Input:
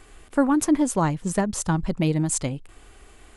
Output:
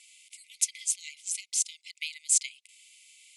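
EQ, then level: brick-wall FIR high-pass 2 kHz; low-pass 8.3 kHz 12 dB/octave; tilt EQ +3 dB/octave; -3.0 dB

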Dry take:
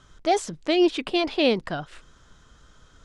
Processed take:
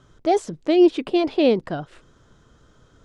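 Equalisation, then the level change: peaking EQ 110 Hz +7.5 dB 0.95 oct; peaking EQ 380 Hz +10 dB 2.3 oct; -5.0 dB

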